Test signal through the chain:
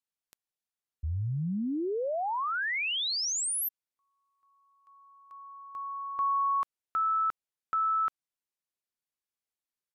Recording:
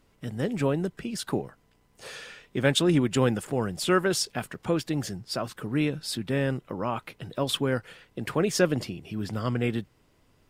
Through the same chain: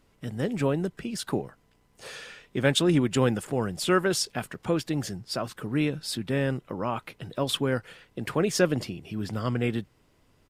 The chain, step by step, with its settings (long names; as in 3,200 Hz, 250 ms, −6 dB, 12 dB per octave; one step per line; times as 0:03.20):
downsampling to 32,000 Hz